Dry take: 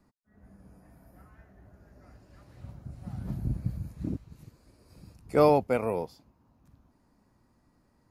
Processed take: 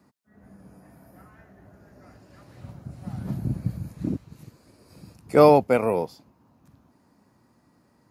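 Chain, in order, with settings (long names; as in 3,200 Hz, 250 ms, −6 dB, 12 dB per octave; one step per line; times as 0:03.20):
high-pass filter 110 Hz 12 dB per octave
level +6.5 dB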